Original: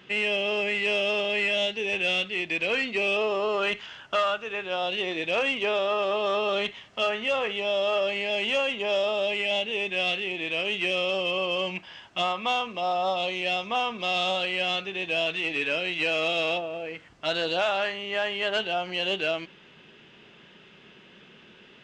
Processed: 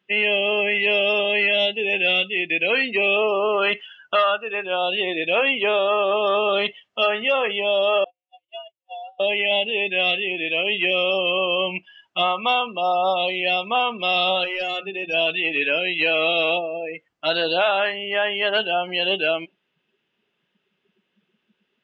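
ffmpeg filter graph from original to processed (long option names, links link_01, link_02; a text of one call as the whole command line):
ffmpeg -i in.wav -filter_complex "[0:a]asettb=1/sr,asplit=3[link_01][link_02][link_03];[link_01]atrim=end=8.044[link_04];[link_02]atrim=start=8.04:end=9.2,asetpts=PTS-STARTPTS,afade=type=in:duration=0.004:curve=qsin,afade=type=out:start_time=1.156:duration=0.004:curve=qsin,agate=range=-50dB:threshold=-24dB:ratio=16:release=100:detection=peak,acompressor=threshold=-36dB:ratio=6:attack=3.2:release=140:knee=1:detection=peak,afreqshift=120[link_05];[link_03]atrim=start=9.196[link_06];[link_04][link_05]acrossfade=duration=0.004:curve1=hsin:curve2=qsin[link_07];[link_07][link_06]acrossfade=duration=0.004:curve1=qsin:curve2=hsin,asettb=1/sr,asplit=3[link_08][link_09][link_10];[link_08]atrim=end=14.444[link_11];[link_09]atrim=start=14.44:end=15.14,asetpts=PTS-STARTPTS,afade=type=in:duration=0.004:curve=qsin,afade=type=out:start_time=0.696:duration=0.004:curve=qsin,lowpass=frequency=2900:poles=1,bandreject=frequency=60:width_type=h:width=6,bandreject=frequency=120:width_type=h:width=6,bandreject=frequency=180:width_type=h:width=6,bandreject=frequency=240:width_type=h:width=6,asoftclip=type=hard:threshold=-27.5dB[link_12];[link_10]atrim=start=15.136[link_13];[link_11][link_12]acrossfade=duration=0.004:curve1=hsin:curve2=qsin[link_14];[link_14][link_13]acrossfade=duration=0.004:curve1=qsin:curve2=hsin,afftdn=noise_reduction=27:noise_floor=-36,lowshelf=frequency=150:gain=-8.5,volume=6.5dB" out.wav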